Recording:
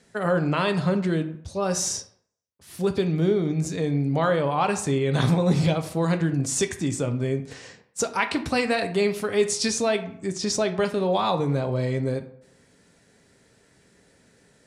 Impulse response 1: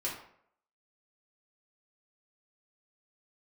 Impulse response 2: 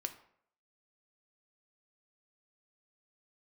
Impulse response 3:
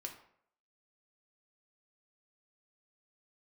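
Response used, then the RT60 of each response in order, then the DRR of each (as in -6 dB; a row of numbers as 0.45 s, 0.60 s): 2; 0.65 s, 0.65 s, 0.65 s; -5.5 dB, 7.0 dB, 2.0 dB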